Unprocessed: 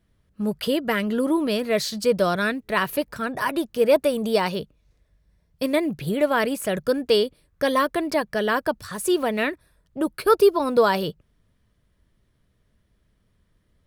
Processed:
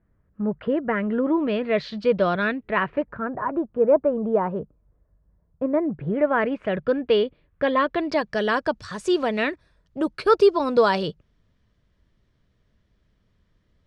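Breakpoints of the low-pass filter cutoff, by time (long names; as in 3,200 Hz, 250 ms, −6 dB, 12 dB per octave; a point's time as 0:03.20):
low-pass filter 24 dB per octave
0:00.85 1,800 Hz
0:01.89 3,400 Hz
0:02.48 3,400 Hz
0:03.42 1,300 Hz
0:05.71 1,300 Hz
0:06.79 3,000 Hz
0:07.73 3,000 Hz
0:08.29 6,600 Hz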